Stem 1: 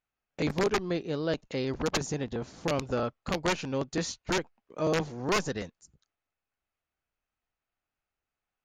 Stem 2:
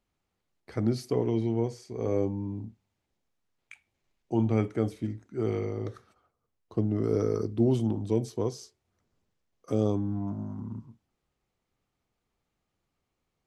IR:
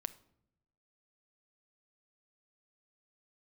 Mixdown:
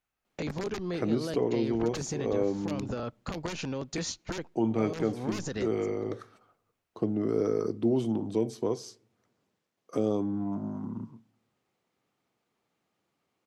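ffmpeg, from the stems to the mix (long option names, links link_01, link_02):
-filter_complex "[0:a]acrossover=split=360|3000[link_01][link_02][link_03];[link_02]acompressor=threshold=-30dB:ratio=6[link_04];[link_01][link_04][link_03]amix=inputs=3:normalize=0,alimiter=level_in=2dB:limit=-24dB:level=0:latency=1:release=31,volume=-2dB,volume=1.5dB,asplit=2[link_05][link_06];[link_06]volume=-16.5dB[link_07];[1:a]highpass=180,highshelf=frequency=5600:gain=-5,adelay=250,volume=3dB,asplit=2[link_08][link_09];[link_09]volume=-11dB[link_10];[2:a]atrim=start_sample=2205[link_11];[link_07][link_10]amix=inputs=2:normalize=0[link_12];[link_12][link_11]afir=irnorm=-1:irlink=0[link_13];[link_05][link_08][link_13]amix=inputs=3:normalize=0,acompressor=threshold=-31dB:ratio=1.5"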